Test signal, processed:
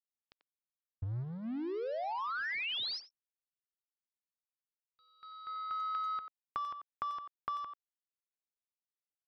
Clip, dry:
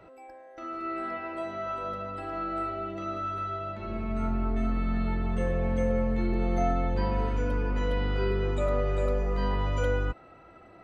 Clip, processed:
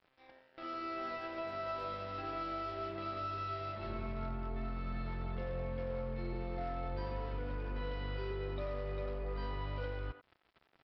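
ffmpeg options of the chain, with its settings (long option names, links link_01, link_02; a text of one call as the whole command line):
ffmpeg -i in.wav -filter_complex "[0:a]equalizer=frequency=125:width_type=o:width=0.33:gain=8,equalizer=frequency=200:width_type=o:width=0.33:gain=-7,equalizer=frequency=4000:width_type=o:width=0.33:gain=4,acompressor=threshold=-31dB:ratio=16,aresample=11025,aeval=exprs='sgn(val(0))*max(abs(val(0))-0.00447,0)':channel_layout=same,aresample=44100,asplit=2[link_01][link_02];[link_02]adelay=90,highpass=300,lowpass=3400,asoftclip=type=hard:threshold=-31dB,volume=-9dB[link_03];[link_01][link_03]amix=inputs=2:normalize=0,volume=-2.5dB" out.wav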